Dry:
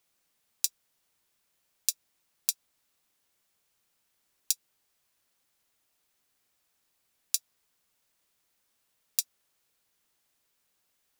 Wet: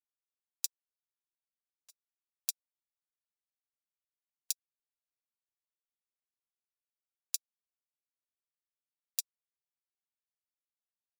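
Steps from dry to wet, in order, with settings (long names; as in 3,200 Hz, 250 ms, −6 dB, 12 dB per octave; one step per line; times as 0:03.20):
0:00.66–0:01.90: tube saturation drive 31 dB, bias 0.45
elliptic high-pass filter 500 Hz
expander for the loud parts 2.5 to 1, over −42 dBFS
level −5.5 dB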